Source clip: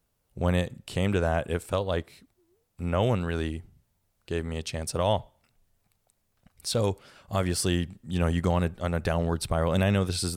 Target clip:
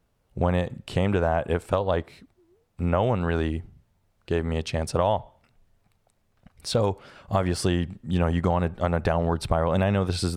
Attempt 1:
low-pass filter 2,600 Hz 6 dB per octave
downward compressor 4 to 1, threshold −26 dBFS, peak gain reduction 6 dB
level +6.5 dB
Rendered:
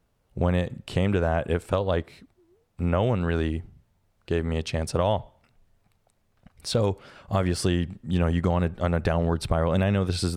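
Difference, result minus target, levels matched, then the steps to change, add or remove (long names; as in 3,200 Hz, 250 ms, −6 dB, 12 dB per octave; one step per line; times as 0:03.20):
1,000 Hz band −3.0 dB
add after low-pass filter: dynamic equaliser 850 Hz, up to +6 dB, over −41 dBFS, Q 1.3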